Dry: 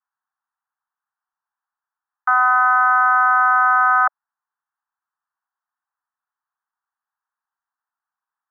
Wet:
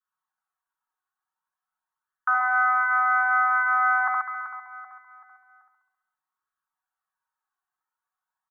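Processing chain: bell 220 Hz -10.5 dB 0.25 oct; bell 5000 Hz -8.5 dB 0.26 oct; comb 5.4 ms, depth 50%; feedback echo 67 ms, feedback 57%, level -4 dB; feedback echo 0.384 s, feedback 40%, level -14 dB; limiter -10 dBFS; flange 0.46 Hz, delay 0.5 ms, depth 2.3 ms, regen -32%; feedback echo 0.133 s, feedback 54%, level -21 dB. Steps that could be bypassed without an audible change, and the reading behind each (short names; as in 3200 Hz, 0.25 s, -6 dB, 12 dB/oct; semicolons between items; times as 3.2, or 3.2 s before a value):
bell 220 Hz: input band starts at 720 Hz; bell 5000 Hz: input band ends at 2000 Hz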